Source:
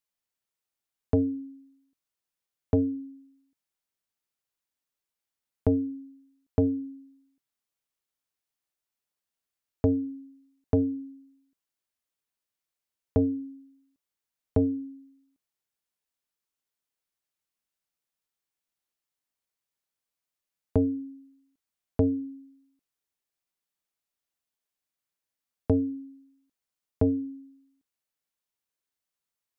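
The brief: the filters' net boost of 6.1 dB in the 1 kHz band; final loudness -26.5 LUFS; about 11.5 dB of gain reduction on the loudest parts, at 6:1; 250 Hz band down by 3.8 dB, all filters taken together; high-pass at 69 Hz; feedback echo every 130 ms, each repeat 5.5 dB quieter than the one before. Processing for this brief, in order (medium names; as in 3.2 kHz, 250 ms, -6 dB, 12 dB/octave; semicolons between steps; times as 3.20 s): high-pass 69 Hz; peaking EQ 250 Hz -4.5 dB; peaking EQ 1 kHz +8.5 dB; compression 6:1, threshold -32 dBFS; feedback delay 130 ms, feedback 53%, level -5.5 dB; trim +14.5 dB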